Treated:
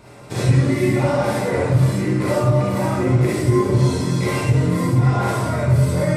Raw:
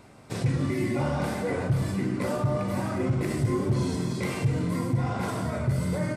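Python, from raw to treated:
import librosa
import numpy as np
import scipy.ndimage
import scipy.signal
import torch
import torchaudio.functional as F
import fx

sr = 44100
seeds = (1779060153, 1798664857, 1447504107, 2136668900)

p1 = fx.rider(x, sr, range_db=5, speed_s=2.0)
p2 = x + (p1 * 10.0 ** (0.5 / 20.0))
p3 = fx.rev_gated(p2, sr, seeds[0], gate_ms=90, shape='rising', drr_db=-5.5)
y = p3 * 10.0 ** (-4.0 / 20.0)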